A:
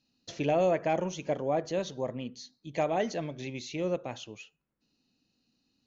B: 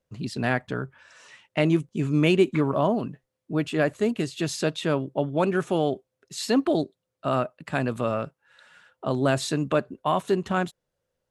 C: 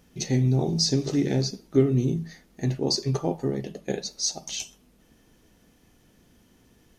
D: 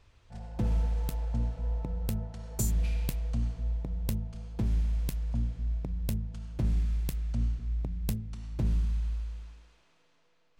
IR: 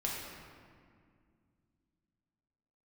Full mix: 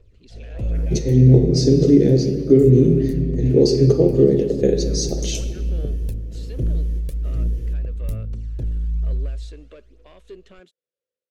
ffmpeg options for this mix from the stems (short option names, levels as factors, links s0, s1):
-filter_complex "[0:a]highpass=1100,volume=0.211,asplit=2[s0][s1];[s1]volume=0.447[s2];[1:a]asoftclip=type=tanh:threshold=0.119,volume=0.211,asplit=2[s3][s4];[2:a]adelay=750,volume=0.891,asplit=2[s5][s6];[s6]volume=0.335[s7];[3:a]equalizer=f=210:t=o:w=1.1:g=-7.5,asoftclip=type=tanh:threshold=0.0316,aphaser=in_gain=1:out_gain=1:delay=1.8:decay=0.59:speed=1.2:type=triangular,volume=0.398,asplit=2[s8][s9];[s9]volume=0.0631[s10];[s4]apad=whole_len=341055[s11];[s5][s11]sidechaingate=range=0.0224:threshold=0.001:ratio=16:detection=peak[s12];[s12][s8]amix=inputs=2:normalize=0,equalizer=f=10000:t=o:w=0.25:g=4,alimiter=limit=0.0944:level=0:latency=1:release=188,volume=1[s13];[s0][s3]amix=inputs=2:normalize=0,bandpass=f=3100:t=q:w=0.71:csg=0,alimiter=level_in=7.94:limit=0.0631:level=0:latency=1:release=363,volume=0.126,volume=1[s14];[4:a]atrim=start_sample=2205[s15];[s2][s7][s10]amix=inputs=3:normalize=0[s16];[s16][s15]afir=irnorm=-1:irlink=0[s17];[s13][s14][s17]amix=inputs=3:normalize=0,lowshelf=f=630:t=q:w=3:g=9.5,dynaudnorm=f=310:g=3:m=1.58"